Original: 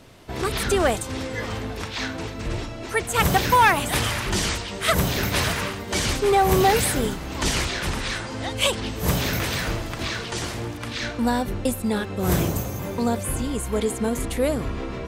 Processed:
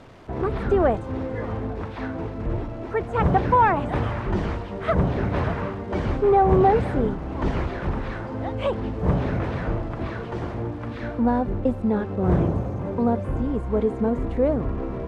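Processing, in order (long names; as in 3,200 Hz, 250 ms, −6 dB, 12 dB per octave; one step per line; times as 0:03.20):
spike at every zero crossing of −23 dBFS
low-pass filter 1,000 Hz 12 dB per octave
level +2 dB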